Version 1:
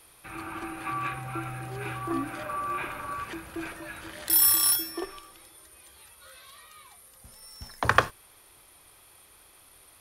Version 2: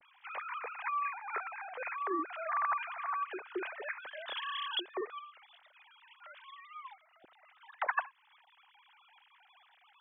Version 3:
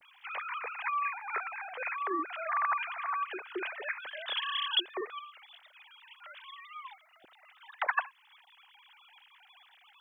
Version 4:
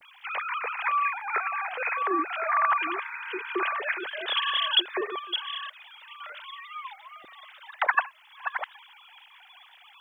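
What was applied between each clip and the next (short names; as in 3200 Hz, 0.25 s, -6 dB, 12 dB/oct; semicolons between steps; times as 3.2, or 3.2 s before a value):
sine-wave speech; harmonic-percussive split percussive +3 dB; compressor 2:1, threshold -33 dBFS, peak gain reduction 11.5 dB; gain -3.5 dB
high shelf 2500 Hz +11.5 dB
reverse delay 0.633 s, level -8 dB; spectral repair 3.05–3.47, 500–2000 Hz after; gain +6.5 dB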